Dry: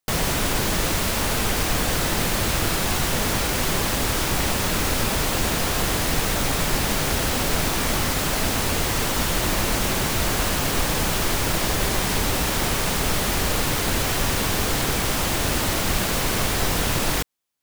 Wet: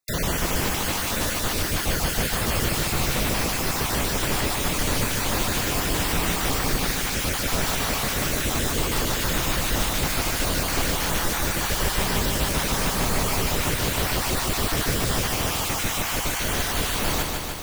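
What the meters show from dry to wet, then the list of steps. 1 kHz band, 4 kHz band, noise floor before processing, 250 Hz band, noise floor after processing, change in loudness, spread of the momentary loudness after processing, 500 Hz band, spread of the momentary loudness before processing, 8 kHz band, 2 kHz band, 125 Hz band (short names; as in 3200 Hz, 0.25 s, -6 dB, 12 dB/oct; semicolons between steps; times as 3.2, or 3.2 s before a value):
-2.0 dB, -1.5 dB, -24 dBFS, -2.0 dB, -27 dBFS, -1.5 dB, 1 LU, -2.0 dB, 0 LU, -1.5 dB, -1.5 dB, -1.5 dB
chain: random spectral dropouts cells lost 35%; lo-fi delay 0.149 s, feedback 80%, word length 7-bit, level -4 dB; gain -2 dB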